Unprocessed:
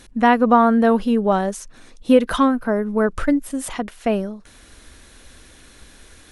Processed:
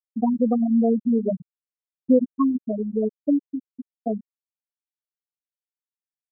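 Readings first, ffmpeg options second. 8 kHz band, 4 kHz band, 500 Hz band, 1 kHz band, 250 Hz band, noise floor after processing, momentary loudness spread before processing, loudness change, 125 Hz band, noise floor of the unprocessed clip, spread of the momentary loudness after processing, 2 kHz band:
below −40 dB, below −40 dB, −7.0 dB, −15.5 dB, −3.0 dB, below −85 dBFS, 13 LU, −4.5 dB, can't be measured, −48 dBFS, 13 LU, below −40 dB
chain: -filter_complex "[0:a]asuperstop=centerf=2500:order=4:qfactor=2.5,acrossover=split=460|3000[link_01][link_02][link_03];[link_02]acompressor=threshold=-21dB:ratio=10[link_04];[link_01][link_04][link_03]amix=inputs=3:normalize=0,highpass=44,aecho=1:1:115:0.237,afftfilt=real='re*gte(hypot(re,im),0.794)':imag='im*gte(hypot(re,im),0.794)':win_size=1024:overlap=0.75,volume=-2dB"

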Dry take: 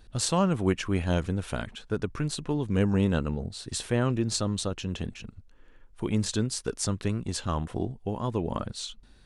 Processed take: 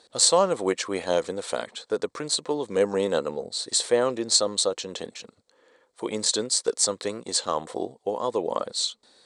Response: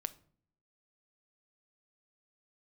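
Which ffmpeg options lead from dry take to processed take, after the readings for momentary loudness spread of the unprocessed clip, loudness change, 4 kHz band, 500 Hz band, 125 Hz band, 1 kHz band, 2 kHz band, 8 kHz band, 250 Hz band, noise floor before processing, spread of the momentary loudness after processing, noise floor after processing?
10 LU, +4.0 dB, +9.5 dB, +7.5 dB, −15.0 dB, +5.0 dB, +1.0 dB, +10.0 dB, −5.0 dB, −55 dBFS, 11 LU, −67 dBFS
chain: -af "highpass=470,equalizer=frequency=500:width_type=q:width=4:gain=8,equalizer=frequency=1500:width_type=q:width=4:gain=-6,equalizer=frequency=2700:width_type=q:width=4:gain=-9,equalizer=frequency=4200:width_type=q:width=4:gain=7,equalizer=frequency=8000:width_type=q:width=4:gain=8,lowpass=frequency=9400:width=0.5412,lowpass=frequency=9400:width=1.3066,volume=6dB"

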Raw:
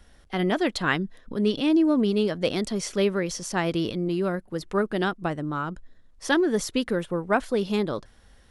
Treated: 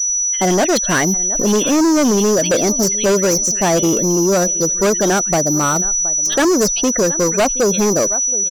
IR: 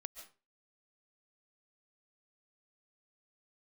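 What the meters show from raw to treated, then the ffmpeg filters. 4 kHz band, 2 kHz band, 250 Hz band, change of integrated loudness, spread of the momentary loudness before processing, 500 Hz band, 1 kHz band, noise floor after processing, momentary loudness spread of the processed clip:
+10.0 dB, +7.0 dB, +8.0 dB, +11.5 dB, 9 LU, +10.5 dB, +10.0 dB, −20 dBFS, 1 LU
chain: -filter_complex "[0:a]equalizer=frequency=100:width_type=o:width=0.67:gain=-8,equalizer=frequency=630:width_type=o:width=0.67:gain=7,equalizer=frequency=6300:width_type=o:width=0.67:gain=5,aeval=exprs='val(0)+0.0316*sin(2*PI*5900*n/s)':channel_layout=same,afftfilt=real='re*gte(hypot(re,im),0.0447)':imag='im*gte(hypot(re,im),0.0447)':win_size=1024:overlap=0.75,asplit=2[link_01][link_02];[link_02]aecho=0:1:720|1440:0.075|0.0217[link_03];[link_01][link_03]amix=inputs=2:normalize=0,agate=range=-33dB:threshold=-49dB:ratio=3:detection=peak,asplit=2[link_04][link_05];[link_05]acompressor=threshold=-32dB:ratio=16,volume=0dB[link_06];[link_04][link_06]amix=inputs=2:normalize=0,acrossover=split=2800[link_07][link_08];[link_07]adelay=80[link_09];[link_09][link_08]amix=inputs=2:normalize=0,asoftclip=type=hard:threshold=-21dB,acontrast=80,volume=3dB"

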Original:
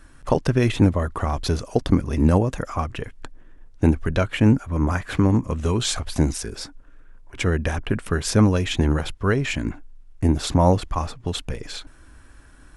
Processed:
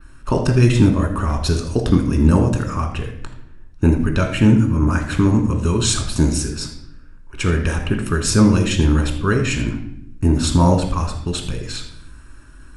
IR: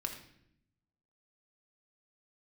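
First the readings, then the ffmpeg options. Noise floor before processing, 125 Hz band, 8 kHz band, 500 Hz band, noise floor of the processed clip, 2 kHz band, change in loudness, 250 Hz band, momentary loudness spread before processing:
−48 dBFS, +5.0 dB, +7.0 dB, +1.5 dB, −41 dBFS, +3.5 dB, +4.0 dB, +4.5 dB, 12 LU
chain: -filter_complex "[0:a]adynamicequalizer=threshold=0.00447:dfrequency=7600:dqfactor=1:tfrequency=7600:tqfactor=1:attack=5:release=100:ratio=0.375:range=3.5:mode=boostabove:tftype=bell[link_01];[1:a]atrim=start_sample=2205[link_02];[link_01][link_02]afir=irnorm=-1:irlink=0,volume=2dB"

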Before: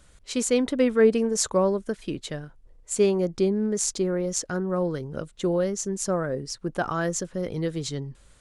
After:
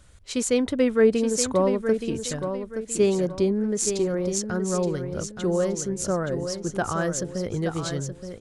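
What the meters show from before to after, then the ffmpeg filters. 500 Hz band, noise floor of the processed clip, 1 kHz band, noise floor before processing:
+1.0 dB, −45 dBFS, +0.5 dB, −55 dBFS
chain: -filter_complex "[0:a]equalizer=frequency=90:width=2.8:gain=12.5,asplit=2[link_01][link_02];[link_02]aecho=0:1:873|1746|2619|3492:0.398|0.135|0.046|0.0156[link_03];[link_01][link_03]amix=inputs=2:normalize=0"

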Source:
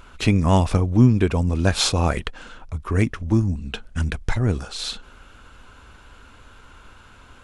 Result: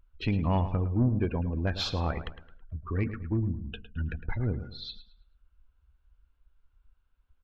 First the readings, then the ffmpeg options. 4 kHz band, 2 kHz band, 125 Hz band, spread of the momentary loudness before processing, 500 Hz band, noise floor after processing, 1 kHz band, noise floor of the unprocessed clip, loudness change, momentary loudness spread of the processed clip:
−11.0 dB, −11.0 dB, −9.0 dB, 14 LU, −10.0 dB, −71 dBFS, −10.0 dB, −48 dBFS, −9.5 dB, 15 LU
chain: -filter_complex "[0:a]bandreject=frequency=219.5:width_type=h:width=4,bandreject=frequency=439:width_type=h:width=4,bandreject=frequency=658.5:width_type=h:width=4,bandreject=frequency=878:width_type=h:width=4,bandreject=frequency=1097.5:width_type=h:width=4,bandreject=frequency=1317:width_type=h:width=4,bandreject=frequency=1536.5:width_type=h:width=4,bandreject=frequency=1756:width_type=h:width=4,bandreject=frequency=1975.5:width_type=h:width=4,bandreject=frequency=2195:width_type=h:width=4,bandreject=frequency=2414.5:width_type=h:width=4,bandreject=frequency=2634:width_type=h:width=4,bandreject=frequency=2853.5:width_type=h:width=4,bandreject=frequency=3073:width_type=h:width=4,afftdn=noise_reduction=28:noise_floor=-29,lowpass=frequency=4800:width=0.5412,lowpass=frequency=4800:width=1.3066,asoftclip=type=tanh:threshold=-9dB,asplit=2[link_01][link_02];[link_02]adelay=108,lowpass=frequency=3700:poles=1,volume=-11.5dB,asplit=2[link_03][link_04];[link_04]adelay=108,lowpass=frequency=3700:poles=1,volume=0.37,asplit=2[link_05][link_06];[link_06]adelay=108,lowpass=frequency=3700:poles=1,volume=0.37,asplit=2[link_07][link_08];[link_08]adelay=108,lowpass=frequency=3700:poles=1,volume=0.37[link_09];[link_03][link_05][link_07][link_09]amix=inputs=4:normalize=0[link_10];[link_01][link_10]amix=inputs=2:normalize=0,volume=-8.5dB"

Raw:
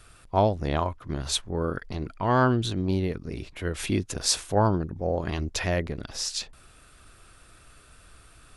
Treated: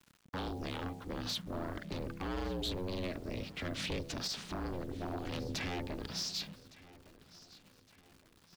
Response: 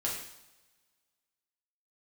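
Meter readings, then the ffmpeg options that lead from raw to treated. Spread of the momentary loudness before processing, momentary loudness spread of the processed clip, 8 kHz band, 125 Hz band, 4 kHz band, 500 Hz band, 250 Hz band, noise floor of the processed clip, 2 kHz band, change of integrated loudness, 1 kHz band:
11 LU, 19 LU, −14.5 dB, −14.0 dB, −7.5 dB, −14.0 dB, −11.0 dB, −65 dBFS, −9.5 dB, −12.0 dB, −16.0 dB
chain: -filter_complex "[0:a]agate=range=-13dB:threshold=-44dB:ratio=16:detection=peak,bandreject=frequency=78.53:width_type=h:width=4,bandreject=frequency=157.06:width_type=h:width=4,bandreject=frequency=235.59:width_type=h:width=4,bandreject=frequency=314.12:width_type=h:width=4,bandreject=frequency=392.65:width_type=h:width=4,bandreject=frequency=471.18:width_type=h:width=4,bandreject=frequency=549.71:width_type=h:width=4,bandreject=frequency=628.24:width_type=h:width=4,bandreject=frequency=706.77:width_type=h:width=4,bandreject=frequency=785.3:width_type=h:width=4,acrossover=split=680|2000[link_01][link_02][link_03];[link_02]acompressor=threshold=-41dB:ratio=6[link_04];[link_01][link_04][link_03]amix=inputs=3:normalize=0,alimiter=limit=-18.5dB:level=0:latency=1:release=126,acrossover=split=240|1400[link_05][link_06][link_07];[link_05]acompressor=threshold=-33dB:ratio=4[link_08];[link_06]acompressor=threshold=-33dB:ratio=4[link_09];[link_07]acompressor=threshold=-33dB:ratio=4[link_10];[link_08][link_09][link_10]amix=inputs=3:normalize=0,aeval=exprs='0.0473*(abs(mod(val(0)/0.0473+3,4)-2)-1)':channel_layout=same,lowpass=frequency=4600:width_type=q:width=1.6,acrusher=bits=9:mix=0:aa=0.000001,aeval=exprs='val(0)*sin(2*PI*180*n/s)':channel_layout=same,asoftclip=type=tanh:threshold=-31dB,aecho=1:1:1162|2324|3486:0.1|0.041|0.0168,volume=1dB"

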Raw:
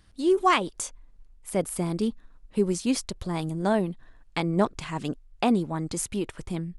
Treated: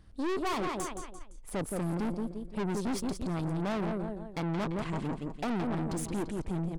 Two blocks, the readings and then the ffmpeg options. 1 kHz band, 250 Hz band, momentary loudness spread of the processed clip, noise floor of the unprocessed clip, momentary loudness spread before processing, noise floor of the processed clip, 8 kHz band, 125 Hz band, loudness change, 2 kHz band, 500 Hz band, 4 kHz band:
−8.0 dB, −5.5 dB, 6 LU, −54 dBFS, 11 LU, −49 dBFS, −9.0 dB, −2.5 dB, −6.5 dB, −7.0 dB, −8.0 dB, −9.0 dB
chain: -af "tiltshelf=frequency=1200:gain=5.5,aecho=1:1:171|342|513|684:0.355|0.138|0.054|0.021,aeval=exprs='(tanh(31.6*val(0)+0.5)-tanh(0.5))/31.6':channel_layout=same"

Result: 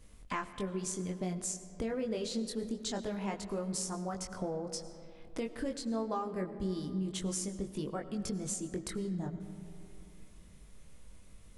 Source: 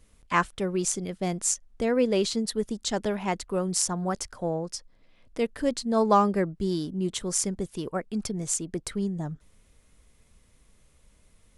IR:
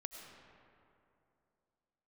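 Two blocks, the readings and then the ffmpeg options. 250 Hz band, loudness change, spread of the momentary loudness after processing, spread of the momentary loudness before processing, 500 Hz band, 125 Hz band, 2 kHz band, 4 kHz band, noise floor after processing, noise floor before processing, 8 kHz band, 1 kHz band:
−7.5 dB, −9.5 dB, 9 LU, 9 LU, −10.5 dB, −7.0 dB, −11.5 dB, −9.0 dB, −54 dBFS, −62 dBFS, −10.0 dB, −13.0 dB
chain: -filter_complex "[0:a]flanger=delay=20:depth=2.6:speed=0.26,acompressor=threshold=-41dB:ratio=4,asplit=2[link_01][link_02];[1:a]atrim=start_sample=2205,lowshelf=frequency=400:gain=6.5[link_03];[link_02][link_03]afir=irnorm=-1:irlink=0,volume=-0.5dB[link_04];[link_01][link_04]amix=inputs=2:normalize=0"

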